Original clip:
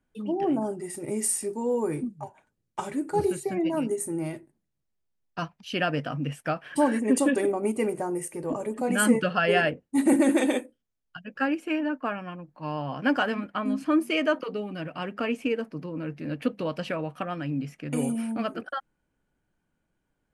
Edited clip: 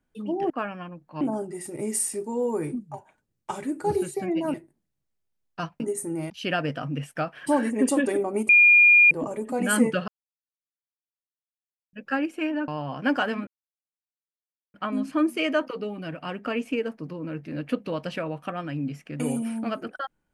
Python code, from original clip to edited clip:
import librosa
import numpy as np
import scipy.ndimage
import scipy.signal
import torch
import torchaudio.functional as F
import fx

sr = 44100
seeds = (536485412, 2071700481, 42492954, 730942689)

y = fx.edit(x, sr, fx.move(start_s=3.83, length_s=0.5, to_s=5.59),
    fx.bleep(start_s=7.78, length_s=0.62, hz=2420.0, db=-11.5),
    fx.silence(start_s=9.37, length_s=1.85),
    fx.move(start_s=11.97, length_s=0.71, to_s=0.5),
    fx.insert_silence(at_s=13.47, length_s=1.27), tone=tone)